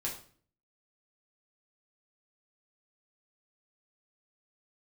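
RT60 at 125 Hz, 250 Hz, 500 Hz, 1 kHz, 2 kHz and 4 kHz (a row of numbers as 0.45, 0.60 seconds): 0.70, 0.65, 0.50, 0.45, 0.40, 0.40 seconds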